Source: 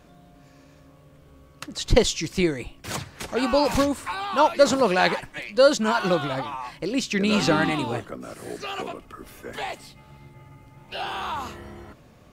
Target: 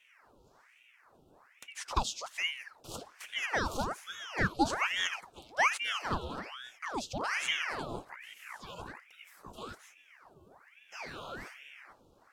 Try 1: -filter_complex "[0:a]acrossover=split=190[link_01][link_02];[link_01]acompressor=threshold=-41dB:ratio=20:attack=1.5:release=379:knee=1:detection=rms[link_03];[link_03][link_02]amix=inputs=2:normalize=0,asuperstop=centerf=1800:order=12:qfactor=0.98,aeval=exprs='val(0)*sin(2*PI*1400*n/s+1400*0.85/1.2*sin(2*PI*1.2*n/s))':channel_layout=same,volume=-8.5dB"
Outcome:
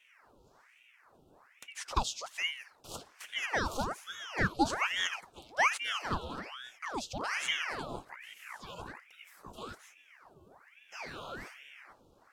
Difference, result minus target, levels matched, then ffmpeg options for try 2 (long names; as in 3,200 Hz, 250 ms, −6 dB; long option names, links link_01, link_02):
downward compressor: peak gain reduction +11 dB
-filter_complex "[0:a]acrossover=split=190[link_01][link_02];[link_01]acompressor=threshold=-29.5dB:ratio=20:attack=1.5:release=379:knee=1:detection=rms[link_03];[link_03][link_02]amix=inputs=2:normalize=0,asuperstop=centerf=1800:order=12:qfactor=0.98,aeval=exprs='val(0)*sin(2*PI*1400*n/s+1400*0.85/1.2*sin(2*PI*1.2*n/s))':channel_layout=same,volume=-8.5dB"